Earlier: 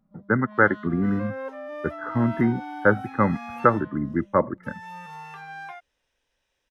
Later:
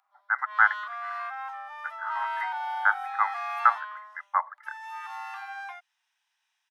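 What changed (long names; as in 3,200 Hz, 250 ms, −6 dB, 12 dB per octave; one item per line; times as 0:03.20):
first sound +10.0 dB
master: add Butterworth high-pass 750 Hz 72 dB per octave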